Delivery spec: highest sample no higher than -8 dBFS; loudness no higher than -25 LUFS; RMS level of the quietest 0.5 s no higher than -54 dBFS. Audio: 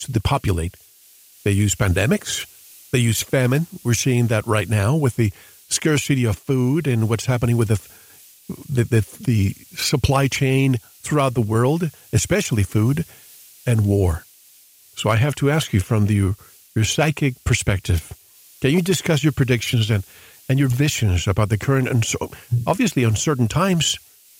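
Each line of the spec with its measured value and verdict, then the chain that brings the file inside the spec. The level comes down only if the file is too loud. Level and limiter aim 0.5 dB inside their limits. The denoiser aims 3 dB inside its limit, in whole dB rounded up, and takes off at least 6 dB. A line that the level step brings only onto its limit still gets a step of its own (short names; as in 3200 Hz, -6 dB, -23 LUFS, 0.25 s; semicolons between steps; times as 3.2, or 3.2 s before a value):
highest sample -4.0 dBFS: fail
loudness -20.0 LUFS: fail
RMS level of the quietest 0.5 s -51 dBFS: fail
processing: gain -5.5 dB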